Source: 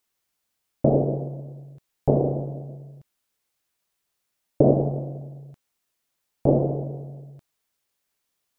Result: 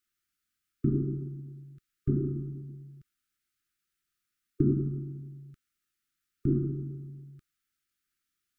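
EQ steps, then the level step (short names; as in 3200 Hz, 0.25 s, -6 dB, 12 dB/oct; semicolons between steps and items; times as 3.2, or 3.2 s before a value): brick-wall FIR band-stop 400–1200 Hz; low shelf 69 Hz +7 dB; bell 1100 Hz +7 dB 1.4 oct; -6.5 dB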